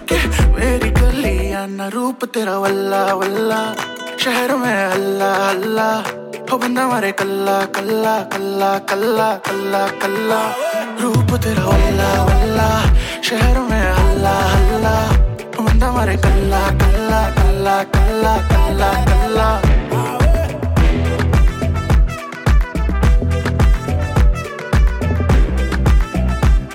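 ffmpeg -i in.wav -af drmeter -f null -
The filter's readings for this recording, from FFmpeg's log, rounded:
Channel 1: DR: 6.3
Overall DR: 6.3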